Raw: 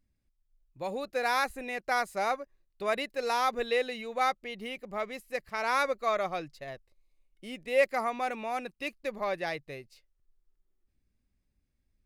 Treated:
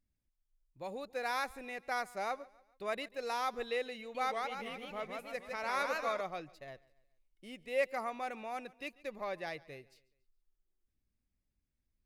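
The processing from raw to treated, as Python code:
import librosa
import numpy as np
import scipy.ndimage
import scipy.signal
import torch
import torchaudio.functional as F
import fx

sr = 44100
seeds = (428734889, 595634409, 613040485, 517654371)

y = fx.echo_feedback(x, sr, ms=141, feedback_pct=44, wet_db=-22.5)
y = fx.echo_warbled(y, sr, ms=153, feedback_pct=51, rate_hz=2.8, cents=212, wet_db=-3.5, at=(3.99, 6.21))
y = y * 10.0 ** (-7.5 / 20.0)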